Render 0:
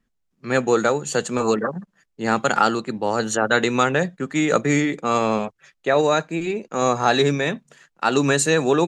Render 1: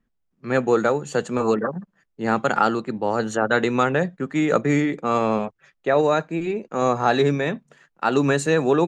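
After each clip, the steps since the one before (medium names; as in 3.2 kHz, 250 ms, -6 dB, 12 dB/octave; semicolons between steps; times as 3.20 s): treble shelf 3.2 kHz -11.5 dB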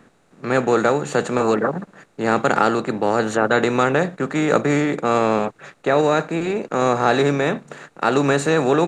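spectral levelling over time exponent 0.6; trim -1 dB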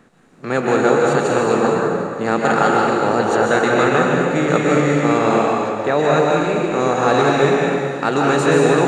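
plate-style reverb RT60 2.1 s, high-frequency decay 0.85×, pre-delay 115 ms, DRR -2.5 dB; trim -1 dB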